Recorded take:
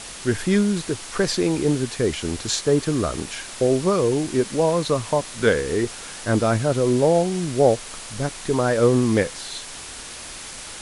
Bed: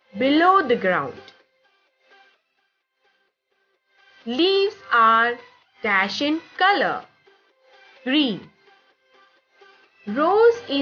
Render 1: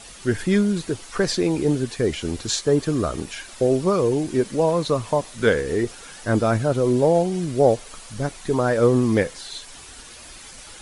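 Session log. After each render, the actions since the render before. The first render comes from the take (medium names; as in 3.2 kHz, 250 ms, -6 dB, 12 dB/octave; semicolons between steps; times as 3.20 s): noise reduction 9 dB, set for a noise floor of -37 dBFS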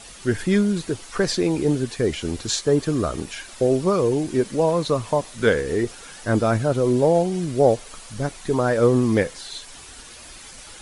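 no audible change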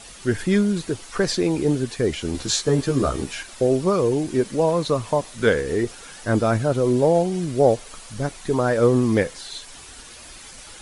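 2.33–3.43 s: doubling 15 ms -2.5 dB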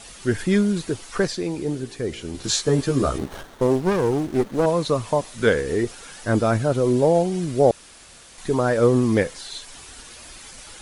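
1.27–2.44 s: feedback comb 57 Hz, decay 1.8 s, mix 50%; 3.18–4.66 s: sliding maximum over 17 samples; 7.71–8.38 s: room tone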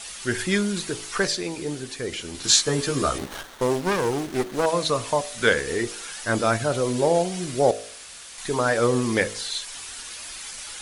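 tilt shelf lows -6 dB, about 790 Hz; de-hum 53.05 Hz, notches 14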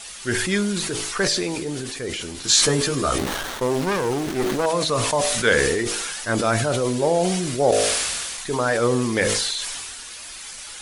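decay stretcher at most 24 dB/s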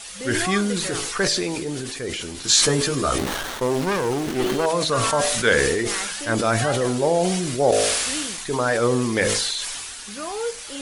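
add bed -13 dB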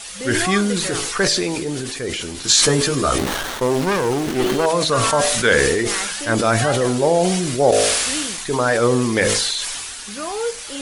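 trim +3.5 dB; peak limiter -3 dBFS, peak gain reduction 2 dB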